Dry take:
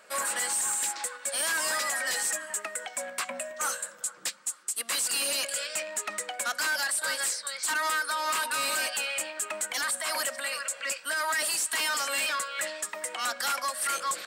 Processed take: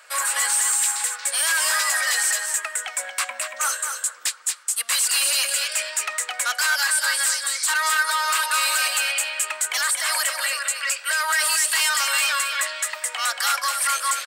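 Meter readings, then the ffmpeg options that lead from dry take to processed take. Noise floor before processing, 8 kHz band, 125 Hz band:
-50 dBFS, +8.5 dB, no reading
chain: -af "highpass=990,aecho=1:1:231:0.501,volume=2.37"

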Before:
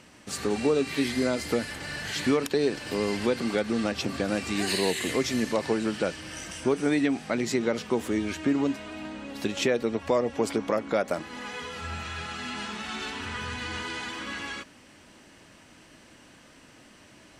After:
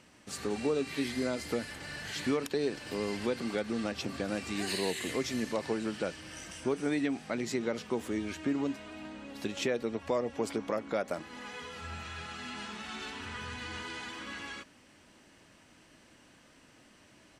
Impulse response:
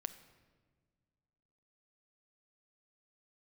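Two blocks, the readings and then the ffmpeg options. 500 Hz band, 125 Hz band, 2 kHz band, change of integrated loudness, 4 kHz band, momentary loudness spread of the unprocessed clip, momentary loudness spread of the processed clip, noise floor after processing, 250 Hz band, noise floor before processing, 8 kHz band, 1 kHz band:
-6.5 dB, -6.5 dB, -6.5 dB, -6.5 dB, -6.5 dB, 10 LU, 10 LU, -60 dBFS, -6.5 dB, -54 dBFS, -6.5 dB, -6.5 dB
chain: -af "aresample=32000,aresample=44100,volume=0.473"

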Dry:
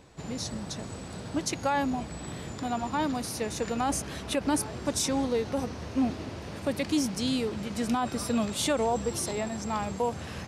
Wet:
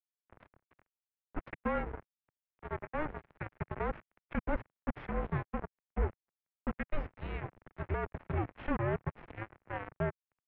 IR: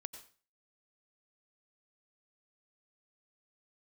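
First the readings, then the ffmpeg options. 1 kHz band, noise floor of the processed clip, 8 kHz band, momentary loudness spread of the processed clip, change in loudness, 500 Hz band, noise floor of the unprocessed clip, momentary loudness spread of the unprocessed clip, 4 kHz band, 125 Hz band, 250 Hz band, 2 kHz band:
-9.5 dB, under -85 dBFS, under -40 dB, 11 LU, -8.5 dB, -8.5 dB, -41 dBFS, 9 LU, -26.0 dB, -2.5 dB, -12.0 dB, -5.0 dB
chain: -af "highpass=f=41:p=1,acrusher=bits=3:mix=0:aa=0.5,highpass=f=180:t=q:w=0.5412,highpass=f=180:t=q:w=1.307,lowpass=f=2500:t=q:w=0.5176,lowpass=f=2500:t=q:w=0.7071,lowpass=f=2500:t=q:w=1.932,afreqshift=-320,volume=0.531"

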